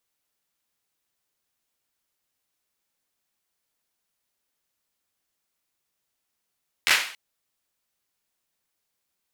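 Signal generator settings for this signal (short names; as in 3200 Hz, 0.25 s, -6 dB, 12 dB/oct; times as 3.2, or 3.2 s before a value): hand clap length 0.28 s, apart 12 ms, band 2200 Hz, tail 0.49 s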